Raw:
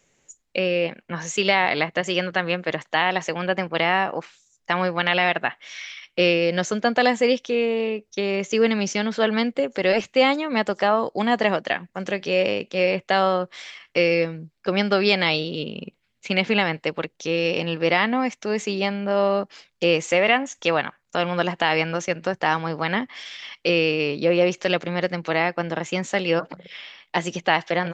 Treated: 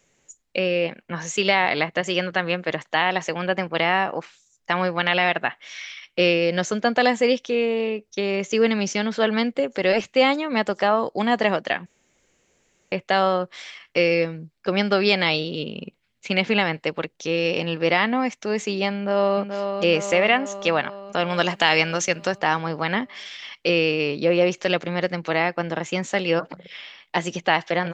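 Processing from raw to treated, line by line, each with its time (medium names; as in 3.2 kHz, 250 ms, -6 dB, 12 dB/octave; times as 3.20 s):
11.86–12.92 s: room tone
18.94–19.40 s: echo throw 430 ms, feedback 65%, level -6.5 dB
21.30–22.38 s: treble shelf 3 kHz +11.5 dB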